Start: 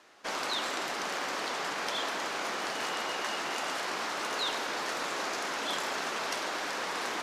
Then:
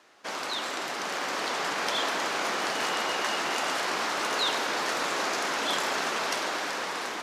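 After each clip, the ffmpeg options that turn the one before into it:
-af "highpass=58,dynaudnorm=f=500:g=5:m=5dB"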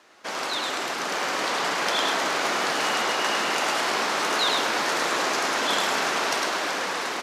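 -af "aecho=1:1:105:0.631,volume=3dB"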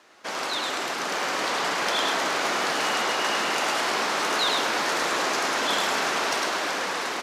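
-af "asoftclip=type=tanh:threshold=-12.5dB"

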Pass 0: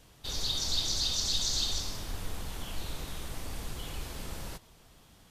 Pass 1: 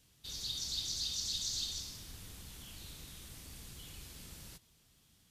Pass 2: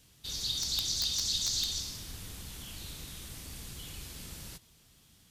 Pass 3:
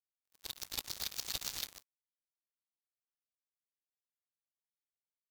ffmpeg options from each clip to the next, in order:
-af "highpass=f=110:p=1,equalizer=f=730:t=o:w=2.8:g=-13.5,volume=-4.5dB"
-af "aeval=exprs='(mod(20*val(0)+1,2)-1)/20':c=same,volume=6dB"
-af "acrusher=bits=3:mix=0:aa=0.5,bandreject=f=1.1k:w=26,volume=-2.5dB"

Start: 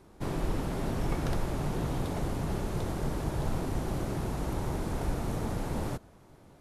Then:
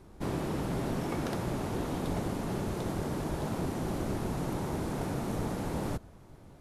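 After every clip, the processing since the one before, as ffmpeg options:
-af "lowshelf=f=180:g=6,afftfilt=real='re*lt(hypot(re,im),0.282)':imag='im*lt(hypot(re,im),0.282)':win_size=1024:overlap=0.75"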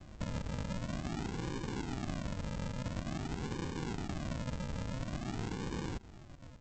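-af "aresample=16000,acrusher=samples=34:mix=1:aa=0.000001:lfo=1:lforange=20.4:lforate=0.48,aresample=44100,acompressor=threshold=-39dB:ratio=2.5,volume=1dB"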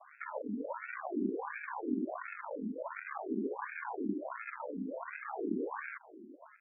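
-af "afftfilt=real='re*between(b*sr/1024,280*pow(1900/280,0.5+0.5*sin(2*PI*1.4*pts/sr))/1.41,280*pow(1900/280,0.5+0.5*sin(2*PI*1.4*pts/sr))*1.41)':imag='im*between(b*sr/1024,280*pow(1900/280,0.5+0.5*sin(2*PI*1.4*pts/sr))/1.41,280*pow(1900/280,0.5+0.5*sin(2*PI*1.4*pts/sr))*1.41)':win_size=1024:overlap=0.75,volume=10.5dB"

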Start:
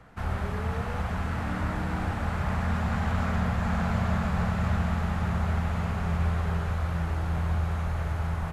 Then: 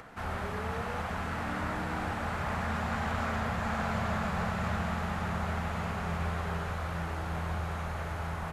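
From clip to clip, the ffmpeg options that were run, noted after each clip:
-af "lowshelf=f=160:g=-10.5,bandreject=f=60:t=h:w=6,bandreject=f=120:t=h:w=6,bandreject=f=180:t=h:w=6,acompressor=mode=upward:threshold=-43dB:ratio=2.5"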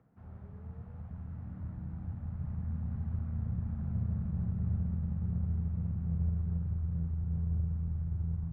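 -af "asubboost=boost=10.5:cutoff=130,bandpass=f=140:t=q:w=1.3:csg=0,aeval=exprs='0.211*(cos(1*acos(clip(val(0)/0.211,-1,1)))-cos(1*PI/2))+0.00531*(cos(8*acos(clip(val(0)/0.211,-1,1)))-cos(8*PI/2))':c=same,volume=-8dB"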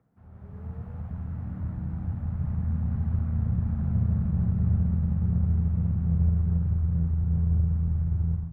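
-af "dynaudnorm=f=320:g=3:m=11dB,volume=-2.5dB"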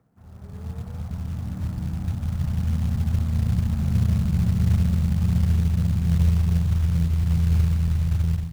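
-af "acrusher=bits=6:mode=log:mix=0:aa=0.000001,volume=4dB"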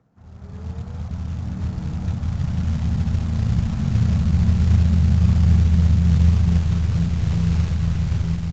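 -filter_complex "[0:a]asplit=2[a][b];[b]aecho=0:1:1122:0.596[c];[a][c]amix=inputs=2:normalize=0,volume=2.5dB" -ar 16000 -c:a aac -b:a 32k

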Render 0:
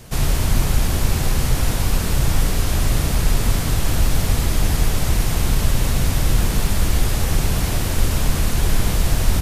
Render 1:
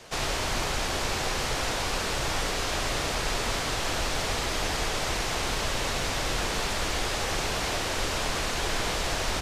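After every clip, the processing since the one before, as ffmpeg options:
-filter_complex "[0:a]acrossover=split=360 7400:gain=0.141 1 0.126[a][b][c];[a][b][c]amix=inputs=3:normalize=0"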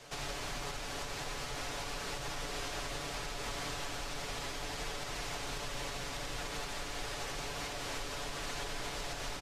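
-af "aecho=1:1:7:0.55,alimiter=limit=-23.5dB:level=0:latency=1:release=314,volume=-6dB"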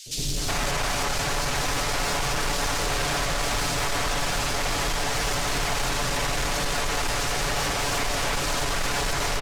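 -filter_complex "[0:a]acrossover=split=370|3400[a][b][c];[a]adelay=60[d];[b]adelay=370[e];[d][e][c]amix=inputs=3:normalize=0,aeval=exprs='0.0447*sin(PI/2*2.51*val(0)/0.0447)':c=same,volume=6dB"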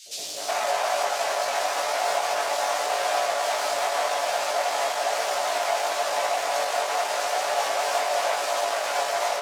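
-af "highpass=f=650:t=q:w=4.9,flanger=delay=17:depth=3.3:speed=0.93"

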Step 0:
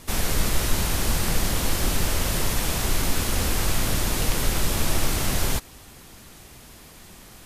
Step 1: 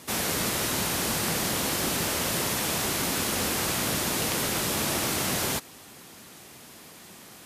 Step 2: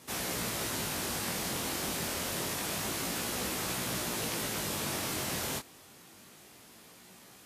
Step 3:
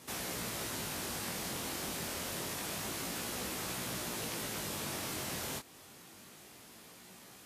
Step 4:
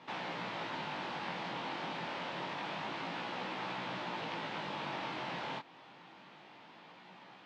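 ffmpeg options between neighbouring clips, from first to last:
-af "highpass=160"
-af "flanger=delay=16:depth=7.2:speed=0.27,volume=-4dB"
-af "acompressor=threshold=-44dB:ratio=1.5"
-af "highpass=f=150:w=0.5412,highpass=f=150:w=1.3066,equalizer=f=230:t=q:w=4:g=-6,equalizer=f=410:t=q:w=4:g=-6,equalizer=f=890:t=q:w=4:g=8,lowpass=f=3.5k:w=0.5412,lowpass=f=3.5k:w=1.3066,volume=1.5dB"

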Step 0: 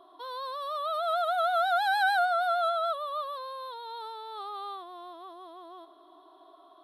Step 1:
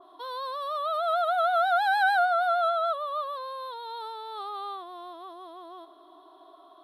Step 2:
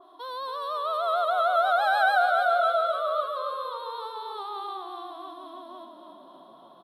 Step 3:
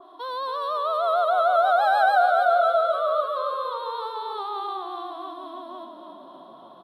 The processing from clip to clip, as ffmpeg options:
-af "adynamicequalizer=threshold=0.00562:dfrequency=3200:dqfactor=0.7:tfrequency=3200:tqfactor=0.7:attack=5:release=100:ratio=0.375:range=3:mode=cutabove:tftype=highshelf,volume=2.5dB"
-filter_complex "[0:a]asplit=9[a][b][c][d][e][f][g][h][i];[b]adelay=280,afreqshift=-36,volume=-6.5dB[j];[c]adelay=560,afreqshift=-72,volume=-11.1dB[k];[d]adelay=840,afreqshift=-108,volume=-15.7dB[l];[e]adelay=1120,afreqshift=-144,volume=-20.2dB[m];[f]adelay=1400,afreqshift=-180,volume=-24.8dB[n];[g]adelay=1680,afreqshift=-216,volume=-29.4dB[o];[h]adelay=1960,afreqshift=-252,volume=-34dB[p];[i]adelay=2240,afreqshift=-288,volume=-38.6dB[q];[a][j][k][l][m][n][o][p][q]amix=inputs=9:normalize=0"
-filter_complex "[0:a]highshelf=f=6k:g=-8.5,acrossover=split=1300|4000[a][b][c];[b]acompressor=threshold=-40dB:ratio=6[d];[a][d][c]amix=inputs=3:normalize=0,volume=5dB"

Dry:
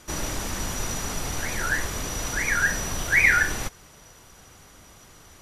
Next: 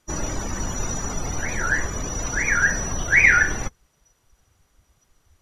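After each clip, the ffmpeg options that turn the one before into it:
-af "afftdn=nr=20:nf=-35,volume=3.5dB"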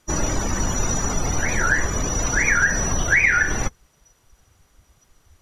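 -af "acompressor=threshold=-19dB:ratio=6,volume=5dB"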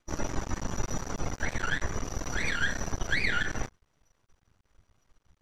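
-af "aeval=exprs='max(val(0),0)':c=same,aemphasis=mode=reproduction:type=50fm,volume=-6dB"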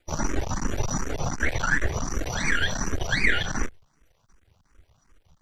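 -filter_complex "[0:a]asplit=2[a][b];[b]afreqshift=2.7[c];[a][c]amix=inputs=2:normalize=1,volume=8.5dB"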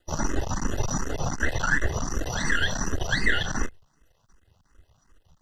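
-af "asuperstop=centerf=2300:order=20:qfactor=5.3"

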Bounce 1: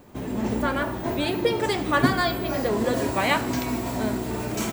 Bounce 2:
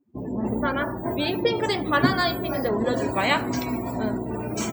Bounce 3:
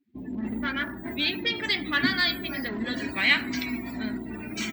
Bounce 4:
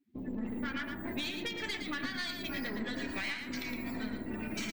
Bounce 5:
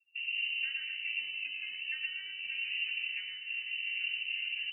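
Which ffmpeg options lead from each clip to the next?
-af "adynamicequalizer=threshold=0.00708:dfrequency=5600:dqfactor=0.78:tfrequency=5600:tqfactor=0.78:attack=5:release=100:ratio=0.375:range=2:mode=boostabove:tftype=bell,afftdn=nr=32:nf=-35,highpass=67"
-filter_complex "[0:a]asplit=2[a][b];[b]asoftclip=type=hard:threshold=-23dB,volume=-8dB[c];[a][c]amix=inputs=2:normalize=0,equalizer=f=125:t=o:w=1:g=-9,equalizer=f=250:t=o:w=1:g=6,equalizer=f=500:t=o:w=1:g=-12,equalizer=f=1k:t=o:w=1:g=-8,equalizer=f=2k:t=o:w=1:g=11,equalizer=f=4k:t=o:w=1:g=9,equalizer=f=8k:t=o:w=1:g=-7,volume=-7dB"
-af "acompressor=threshold=-31dB:ratio=16,aeval=exprs='(tanh(28.2*val(0)+0.55)-tanh(0.55))/28.2':c=same,aecho=1:1:114:0.473"
-filter_complex "[0:a]asplit=2[a][b];[b]acrusher=bits=6:mix=0:aa=0.000001,volume=-11dB[c];[a][c]amix=inputs=2:normalize=0,asuperstop=centerf=2200:order=8:qfactor=0.71,lowpass=f=2.6k:t=q:w=0.5098,lowpass=f=2.6k:t=q:w=0.6013,lowpass=f=2.6k:t=q:w=0.9,lowpass=f=2.6k:t=q:w=2.563,afreqshift=-3000"

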